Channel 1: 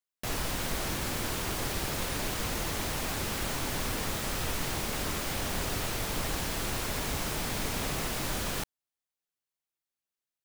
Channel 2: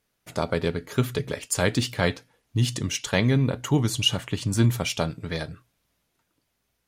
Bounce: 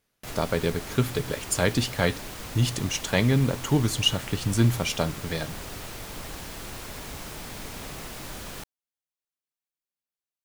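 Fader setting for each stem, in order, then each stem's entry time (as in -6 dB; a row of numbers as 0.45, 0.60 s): -5.5, -0.5 dB; 0.00, 0.00 s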